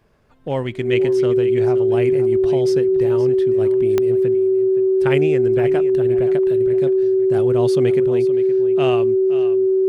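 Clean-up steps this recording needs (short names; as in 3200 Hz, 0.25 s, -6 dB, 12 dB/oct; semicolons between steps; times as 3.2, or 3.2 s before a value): de-click; notch 380 Hz, Q 30; inverse comb 0.52 s -13.5 dB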